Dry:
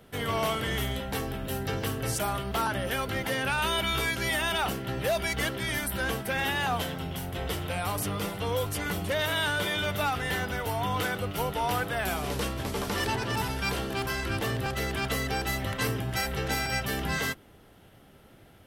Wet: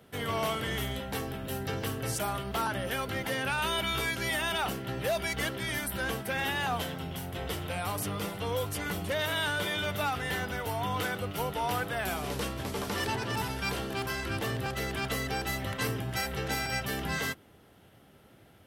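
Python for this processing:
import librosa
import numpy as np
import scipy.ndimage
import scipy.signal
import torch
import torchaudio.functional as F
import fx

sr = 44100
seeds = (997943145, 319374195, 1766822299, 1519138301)

y = scipy.signal.sosfilt(scipy.signal.butter(2, 61.0, 'highpass', fs=sr, output='sos'), x)
y = y * 10.0 ** (-2.5 / 20.0)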